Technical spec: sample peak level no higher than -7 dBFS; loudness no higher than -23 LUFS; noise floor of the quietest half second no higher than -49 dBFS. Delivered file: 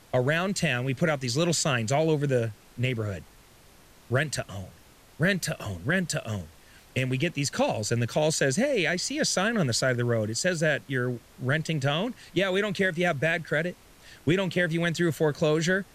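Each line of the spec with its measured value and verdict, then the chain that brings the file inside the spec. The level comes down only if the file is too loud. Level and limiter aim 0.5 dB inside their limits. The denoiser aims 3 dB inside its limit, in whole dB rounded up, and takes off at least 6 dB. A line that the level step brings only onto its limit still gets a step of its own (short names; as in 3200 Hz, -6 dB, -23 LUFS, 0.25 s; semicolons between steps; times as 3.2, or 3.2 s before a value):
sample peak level -12.5 dBFS: OK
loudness -26.5 LUFS: OK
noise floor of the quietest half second -54 dBFS: OK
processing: none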